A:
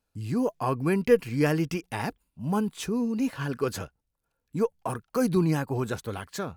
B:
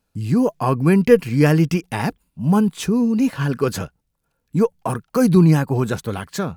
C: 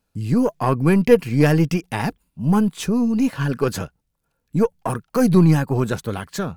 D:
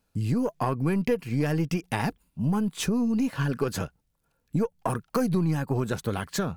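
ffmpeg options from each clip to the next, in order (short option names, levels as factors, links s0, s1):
-af "equalizer=f=170:w=1.6:g=6,volume=2.24"
-af "aeval=exprs='0.891*(cos(1*acos(clip(val(0)/0.891,-1,1)))-cos(1*PI/2))+0.0447*(cos(6*acos(clip(val(0)/0.891,-1,1)))-cos(6*PI/2))':c=same,volume=0.891"
-af "acompressor=threshold=0.0708:ratio=5"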